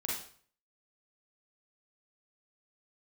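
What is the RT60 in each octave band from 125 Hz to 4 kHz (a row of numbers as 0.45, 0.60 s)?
0.60, 0.50, 0.50, 0.50, 0.45, 0.45 s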